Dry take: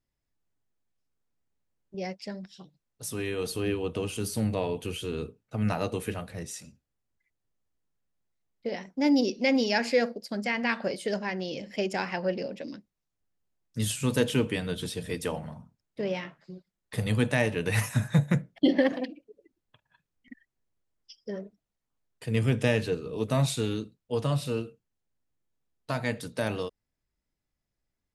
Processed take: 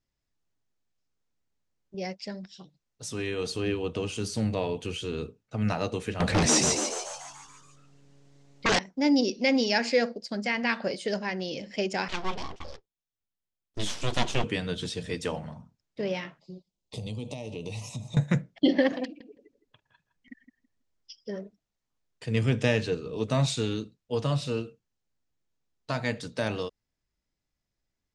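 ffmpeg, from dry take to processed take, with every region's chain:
-filter_complex "[0:a]asettb=1/sr,asplit=3[a][b][c];[a]atrim=end=6.204[d];[b]atrim=start=6.2:end=8.79,asetpts=PTS-STARTPTS,afade=t=in:d=0.004:c=qsin,afade=t=out:st=2.586:d=0.004:c=qsin,aeval=exprs='0.1*sin(PI/2*5.62*val(0)/0.1)':c=same,asplit=9[e][f][g][h][i][j][k][l][m];[f]adelay=144,afreqshift=140,volume=-3dB[n];[g]adelay=288,afreqshift=280,volume=-7.9dB[o];[h]adelay=432,afreqshift=420,volume=-12.8dB[p];[i]adelay=576,afreqshift=560,volume=-17.6dB[q];[j]adelay=720,afreqshift=700,volume=-22.5dB[r];[k]adelay=864,afreqshift=840,volume=-27.4dB[s];[l]adelay=1008,afreqshift=980,volume=-32.3dB[t];[m]adelay=1152,afreqshift=1120,volume=-37.2dB[u];[e][n][o][p][q][r][s][t][u]amix=inputs=9:normalize=0,atrim=end_sample=114219[v];[c]atrim=start=8.786[w];[d][v]acrossfade=d=0.004:c1=hsin:c2=qsin[x];[x][w]acrossfade=d=0.004:c1=qsin:c2=hsin,asettb=1/sr,asplit=3[y][z][aa];[y]atrim=end=12.084[ab];[z]atrim=start=12.08:end=14.44,asetpts=PTS-STARTPTS,afade=t=in:d=0.004:c=qsin,afade=t=out:st=2.356:d=0.004:c=qsin,aeval=exprs='abs(val(0))':c=same,agate=range=-11dB:threshold=-44dB:ratio=16:release=100:detection=peak,equalizer=f=3.3k:t=o:w=0.35:g=5.5[ac];[aa]atrim=start=14.436[ad];[ab][ac]acrossfade=d=0.004:c1=hsin:c2=qsin[ae];[ae][ad]acrossfade=d=0.004:c1=qsin:c2=hsin,asettb=1/sr,asplit=3[af][ag][ah];[af]atrim=end=16.394[ai];[ag]atrim=start=16.39:end=18.17,asetpts=PTS-STARTPTS,afade=t=in:d=0.004:c=qsin,afade=t=out:st=1.776:d=0.004:c=qsin,acompressor=threshold=-32dB:ratio=6:attack=3.2:release=140:knee=1:detection=peak,asuperstop=centerf=1600:order=4:qfactor=0.88[aj];[ah]atrim=start=18.166[ak];[ai][aj]acrossfade=d=0.004:c1=hsin:c2=qsin[al];[al][ak]acrossfade=d=0.004:c1=qsin:c2=hsin,asettb=1/sr,asplit=3[am][an][ao];[am]atrim=end=19.044[ap];[an]atrim=start=19.04:end=21.43,asetpts=PTS-STARTPTS,afade=t=in:d=0.004:c=qsin,afade=t=out:st=2.386:d=0.004:c=qsin,asplit=2[aq][ar];[ar]adelay=163,lowpass=f=1.5k:p=1,volume=-10.5dB,asplit=2[as][at];[at]adelay=163,lowpass=f=1.5k:p=1,volume=0.2,asplit=2[au][av];[av]adelay=163,lowpass=f=1.5k:p=1,volume=0.2[aw];[aq][as][au][aw]amix=inputs=4:normalize=0,atrim=end_sample=105399,asoftclip=type=hard:threshold=-26.5dB[ax];[ao]atrim=start=21.426[ay];[ap][ax]acrossfade=d=0.004:c1=hsin:c2=qsin[az];[az][ay]acrossfade=d=0.004:c1=qsin:c2=hsin,lowpass=f=7k:w=0.5412,lowpass=f=7k:w=1.3066,highshelf=f=5.1k:g=7"

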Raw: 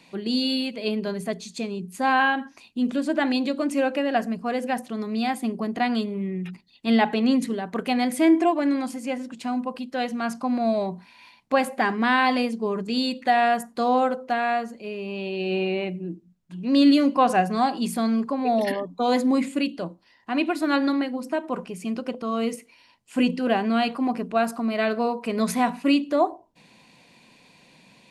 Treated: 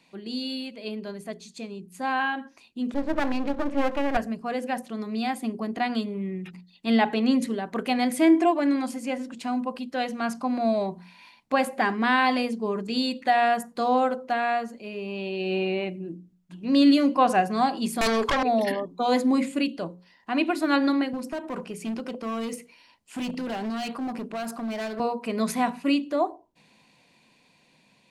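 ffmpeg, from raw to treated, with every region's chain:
-filter_complex "[0:a]asettb=1/sr,asplit=3[a][b][c];[a]atrim=end=2.944[d];[b]atrim=start=2.94:end=4.17,asetpts=PTS-STARTPTS,afade=t=in:d=0.004:c=qsin,afade=t=out:st=1.226:d=0.004:c=qsin,lowpass=2k,acontrast=32,aeval=exprs='max(val(0),0)':c=same[e];[c]atrim=start=4.166[f];[d][e]acrossfade=d=0.004:c1=hsin:c2=qsin[g];[g][f]acrossfade=d=0.004:c1=qsin:c2=hsin,asettb=1/sr,asplit=3[h][i][j];[h]atrim=end=18.014[k];[i]atrim=start=18.01:end=18.43,asetpts=PTS-STARTPTS,afade=t=in:d=0.004:c=qsin,afade=t=out:st=0.416:d=0.004:c=qsin,highpass=f=390:w=0.5412,highpass=f=390:w=1.3066,aeval=exprs='(tanh(25.1*val(0)+0.55)-tanh(0.55))/25.1':c=same,aeval=exprs='0.126*sin(PI/2*5.62*val(0)/0.126)':c=same[l];[j]atrim=start=18.426[m];[k][l]acrossfade=d=0.004:c1=hsin:c2=qsin[n];[n][m]acrossfade=d=0.004:c1=qsin:c2=hsin,asettb=1/sr,asplit=3[o][p][q];[o]atrim=end=21.134[r];[p]atrim=start=21.13:end=25,asetpts=PTS-STARTPTS,afade=t=in:d=0.004:c=qsin,afade=t=out:st=3.866:d=0.004:c=qsin,acrossover=split=140|3000[s][t][u];[t]acompressor=threshold=-25dB:ratio=4:attack=3.2:release=140:knee=2.83:detection=peak[v];[s][v][u]amix=inputs=3:normalize=0,volume=26.5dB,asoftclip=hard,volume=-26.5dB[w];[q]atrim=start=24.996[x];[r][w]acrossfade=d=0.004:c1=hsin:c2=qsin[y];[y][x]acrossfade=d=0.004:c1=qsin:c2=hsin,bandreject=f=60:t=h:w=6,bandreject=f=120:t=h:w=6,bandreject=f=180:t=h:w=6,bandreject=f=240:t=h:w=6,bandreject=f=300:t=h:w=6,bandreject=f=360:t=h:w=6,bandreject=f=420:t=h:w=6,bandreject=f=480:t=h:w=6,bandreject=f=540:t=h:w=6,dynaudnorm=f=500:g=11:m=11.5dB,volume=-7.5dB"

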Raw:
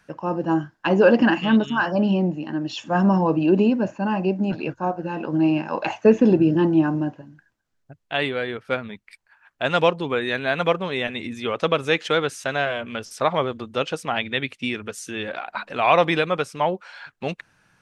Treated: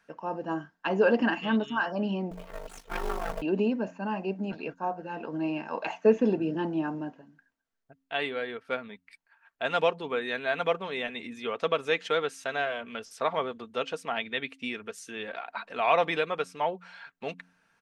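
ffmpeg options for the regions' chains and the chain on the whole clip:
-filter_complex "[0:a]asettb=1/sr,asplit=3[a][b][c];[a]atrim=end=2.314[d];[b]atrim=start=2.31:end=3.42,asetpts=PTS-STARTPTS,afade=t=in:d=0.004:c=qsin,afade=t=out:st=1.106:d=0.004:c=qsin,aeval=exprs='abs(val(0))':c=same,acrusher=bits=5:mode=log:mix=0:aa=0.000001,aeval=exprs='val(0)*sin(2*PI*25*n/s)':c=same[e];[c]atrim=start=3.416[f];[d][e]acrossfade=d=0.004:c1=hsin:c2=qsin[g];[g][f]acrossfade=d=0.004:c1=qsin:c2=hsin,bass=f=250:g=-8,treble=f=4k:g=-3,aecho=1:1:4.4:0.36,bandreject=f=89.6:t=h:w=4,bandreject=f=179.2:t=h:w=4,bandreject=f=268.8:t=h:w=4,volume=-7dB"

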